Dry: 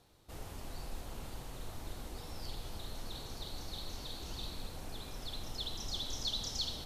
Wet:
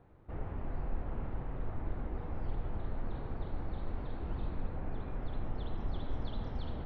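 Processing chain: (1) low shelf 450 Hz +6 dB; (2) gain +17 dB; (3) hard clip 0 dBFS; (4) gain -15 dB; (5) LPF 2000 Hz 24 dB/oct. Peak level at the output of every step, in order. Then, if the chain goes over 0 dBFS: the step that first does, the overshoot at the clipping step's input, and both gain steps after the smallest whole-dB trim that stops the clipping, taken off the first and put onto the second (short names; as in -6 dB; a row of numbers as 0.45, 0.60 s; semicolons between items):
-22.5, -5.5, -5.5, -20.5, -23.0 dBFS; no overload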